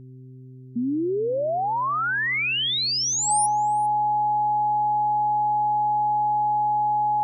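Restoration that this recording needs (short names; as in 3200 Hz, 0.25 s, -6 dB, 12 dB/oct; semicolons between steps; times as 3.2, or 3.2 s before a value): de-hum 128.7 Hz, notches 3; notch 840 Hz, Q 30; inverse comb 0.402 s -24 dB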